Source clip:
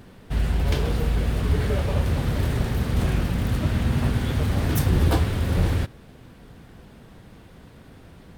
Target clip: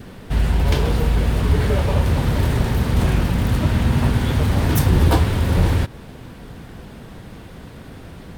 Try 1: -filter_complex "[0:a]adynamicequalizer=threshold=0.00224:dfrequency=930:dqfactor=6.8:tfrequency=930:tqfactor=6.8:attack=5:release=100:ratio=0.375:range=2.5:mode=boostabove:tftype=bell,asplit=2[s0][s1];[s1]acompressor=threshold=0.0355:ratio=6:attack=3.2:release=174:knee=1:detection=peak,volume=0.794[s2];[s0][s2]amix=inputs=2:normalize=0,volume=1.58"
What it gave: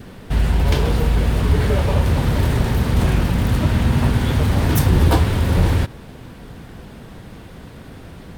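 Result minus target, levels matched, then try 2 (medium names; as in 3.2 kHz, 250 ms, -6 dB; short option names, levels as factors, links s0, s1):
compression: peak gain reduction -6 dB
-filter_complex "[0:a]adynamicequalizer=threshold=0.00224:dfrequency=930:dqfactor=6.8:tfrequency=930:tqfactor=6.8:attack=5:release=100:ratio=0.375:range=2.5:mode=boostabove:tftype=bell,asplit=2[s0][s1];[s1]acompressor=threshold=0.0158:ratio=6:attack=3.2:release=174:knee=1:detection=peak,volume=0.794[s2];[s0][s2]amix=inputs=2:normalize=0,volume=1.58"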